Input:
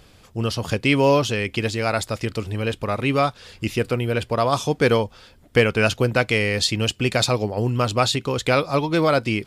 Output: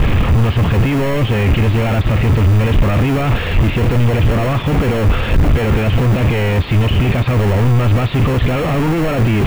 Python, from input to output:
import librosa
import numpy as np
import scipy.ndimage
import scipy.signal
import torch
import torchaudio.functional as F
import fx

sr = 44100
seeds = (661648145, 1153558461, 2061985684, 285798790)

p1 = np.sign(x) * np.sqrt(np.mean(np.square(x)))
p2 = scipy.signal.sosfilt(scipy.signal.butter(6, 3000.0, 'lowpass', fs=sr, output='sos'), p1)
p3 = fx.low_shelf(p2, sr, hz=180.0, db=10.0)
p4 = fx.notch(p3, sr, hz=1500.0, q=17.0)
p5 = fx.sample_hold(p4, sr, seeds[0], rate_hz=1200.0, jitter_pct=0)
p6 = p4 + (p5 * librosa.db_to_amplitude(-9.0))
y = p6 * librosa.db_to_amplitude(2.5)